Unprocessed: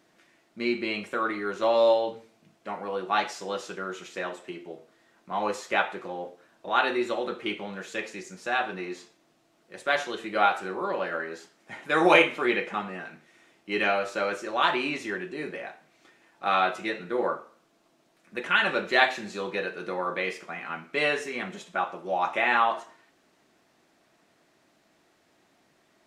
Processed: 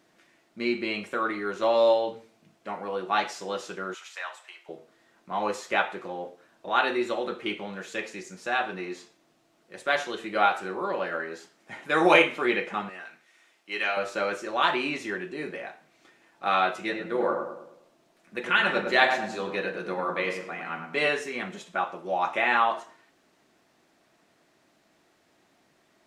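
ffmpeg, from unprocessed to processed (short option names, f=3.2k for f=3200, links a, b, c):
-filter_complex "[0:a]asettb=1/sr,asplit=3[a][b][c];[a]atrim=end=3.944[d];[b]atrim=start=3.94:end=4.69,asetpts=PTS-STARTPTS,afade=t=in:d=0.004:c=qsin,afade=t=out:st=0.746:d=0.004:c=qsin,highpass=f=810:w=0.5412,highpass=f=810:w=1.3066[e];[c]atrim=start=4.686[f];[d][e]acrossfade=d=0.004:c1=hsin:c2=qsin[g];[g][f]acrossfade=d=0.004:c1=qsin:c2=hsin,asettb=1/sr,asplit=3[h][i][j];[h]atrim=end=12.894[k];[i]atrim=start=12.89:end=13.97,asetpts=PTS-STARTPTS,afade=t=in:d=0.004:c=qsin,afade=t=out:st=1.076:d=0.004:c=qsin,highpass=f=1.1k:p=1[l];[j]atrim=start=13.966[m];[k][l]acrossfade=d=0.004:c1=hsin:c2=qsin[n];[n][m]acrossfade=d=0.004:c1=qsin:c2=hsin,asettb=1/sr,asplit=3[o][p][q];[o]atrim=end=16.804[r];[p]atrim=start=16.8:end=21.09,asetpts=PTS-STARTPTS,afade=t=in:d=0.004:c=qsin,afade=t=out:st=4.286:d=0.004:c=qsin,asplit=2[s][t];[t]adelay=103,lowpass=f=1.3k:p=1,volume=-4dB,asplit=2[u][v];[v]adelay=103,lowpass=f=1.3k:p=1,volume=0.5,asplit=2[w][x];[x]adelay=103,lowpass=f=1.3k:p=1,volume=0.5,asplit=2[y][z];[z]adelay=103,lowpass=f=1.3k:p=1,volume=0.5,asplit=2[aa][ab];[ab]adelay=103,lowpass=f=1.3k:p=1,volume=0.5,asplit=2[ac][ad];[ad]adelay=103,lowpass=f=1.3k:p=1,volume=0.5[ae];[s][u][w][y][aa][ac][ae]amix=inputs=7:normalize=0,atrim=end_sample=189189[af];[q]atrim=start=21.086[ag];[r][af]acrossfade=d=0.004:c1=hsin:c2=qsin[ah];[ah][ag]acrossfade=d=0.004:c1=qsin:c2=hsin"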